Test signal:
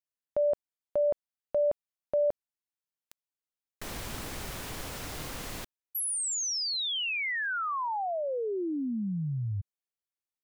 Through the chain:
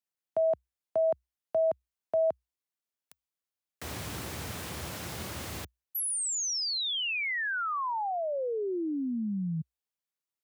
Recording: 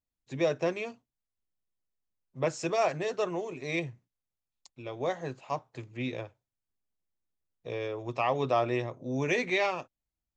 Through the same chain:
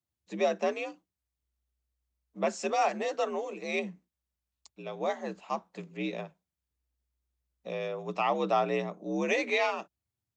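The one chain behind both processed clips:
frequency shifter +61 Hz

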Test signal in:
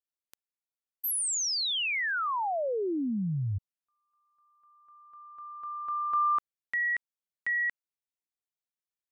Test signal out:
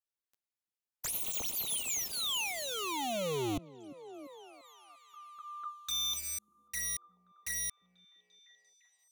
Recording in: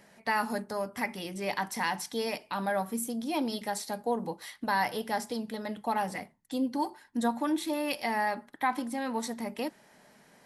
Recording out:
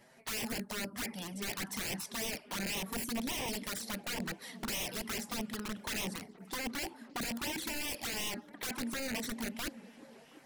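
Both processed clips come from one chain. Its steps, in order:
wrap-around overflow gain 29 dB
flanger swept by the level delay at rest 9.3 ms, full sweep at −30.5 dBFS
echo through a band-pass that steps 345 ms, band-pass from 220 Hz, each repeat 0.7 octaves, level −10.5 dB

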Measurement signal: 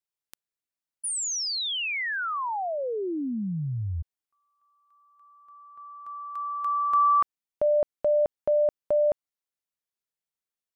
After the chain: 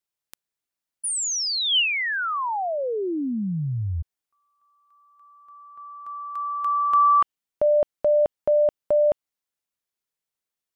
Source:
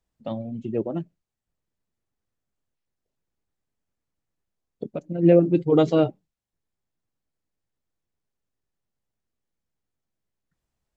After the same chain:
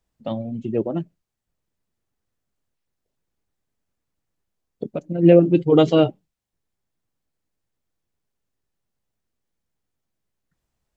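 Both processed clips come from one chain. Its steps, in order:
dynamic equaliser 3,000 Hz, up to +8 dB, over −55 dBFS, Q 4.7
level +3.5 dB

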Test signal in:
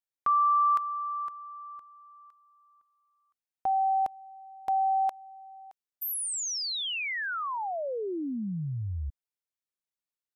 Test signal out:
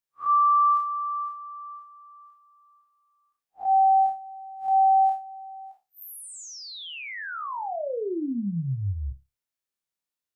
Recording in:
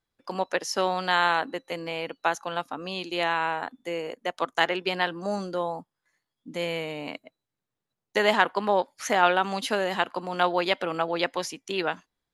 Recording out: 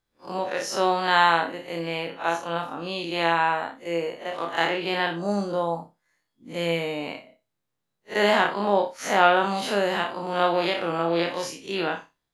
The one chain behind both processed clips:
spectrum smeared in time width 94 ms
flutter between parallel walls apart 5.1 metres, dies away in 0.23 s
level +4 dB

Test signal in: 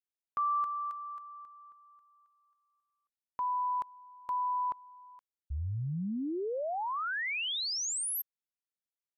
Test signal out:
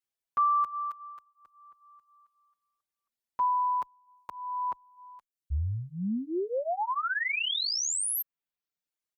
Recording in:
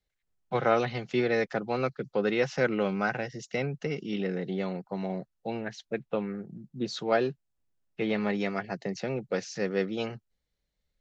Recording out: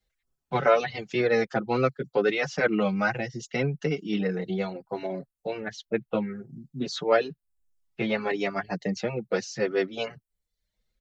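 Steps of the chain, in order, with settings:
reverb reduction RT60 0.6 s
barber-pole flanger 5.8 ms +0.64 Hz
level +7 dB

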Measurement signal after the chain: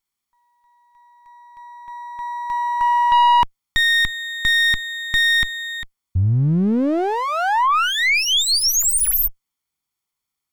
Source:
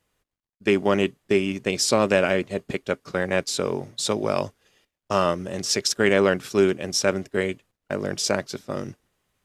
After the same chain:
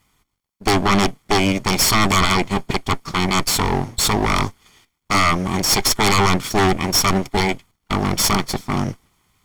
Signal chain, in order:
lower of the sound and its delayed copy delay 0.91 ms
sine wavefolder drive 14 dB, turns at −5 dBFS
level −6 dB

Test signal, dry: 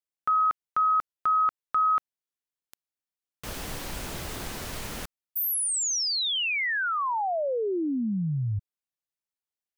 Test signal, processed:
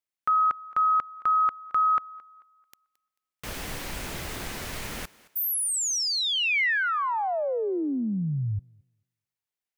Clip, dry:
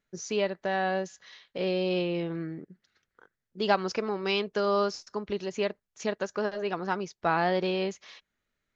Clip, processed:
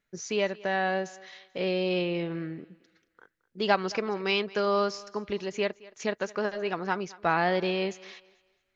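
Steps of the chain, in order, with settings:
parametric band 2,100 Hz +4 dB 0.85 octaves
feedback echo with a high-pass in the loop 220 ms, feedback 33%, high-pass 250 Hz, level −20.5 dB

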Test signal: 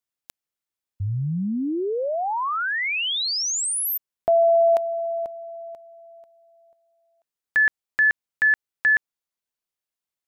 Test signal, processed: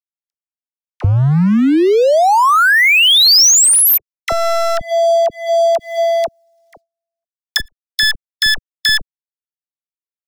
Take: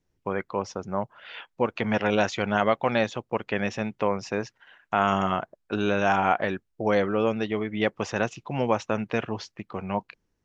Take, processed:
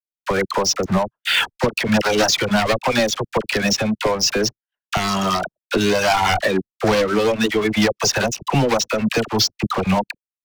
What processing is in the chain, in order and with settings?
wavefolder on the positive side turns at −20.5 dBFS
camcorder AGC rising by 28 dB per second, up to +26 dB
noise gate −38 dBFS, range −32 dB
reverb reduction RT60 1.9 s
parametric band 5,300 Hz +11.5 dB 1 octave
downward compressor 2.5 to 1, threshold −28 dBFS
leveller curve on the samples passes 5
all-pass dispersion lows, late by 45 ms, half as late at 770 Hz
level −3.5 dB

